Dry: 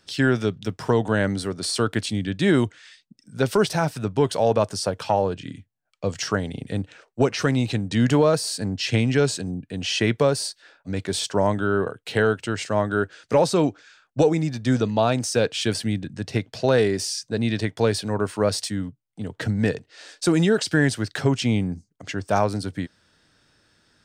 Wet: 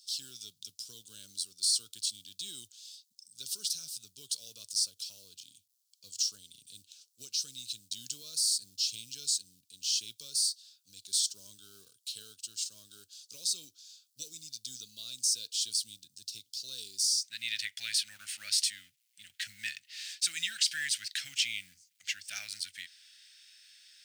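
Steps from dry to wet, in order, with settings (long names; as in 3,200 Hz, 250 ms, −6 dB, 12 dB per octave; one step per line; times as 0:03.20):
mu-law and A-law mismatch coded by mu
inverse Chebyshev high-pass filter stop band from 2,100 Hz, stop band 40 dB, from 0:17.23 stop band from 1,100 Hz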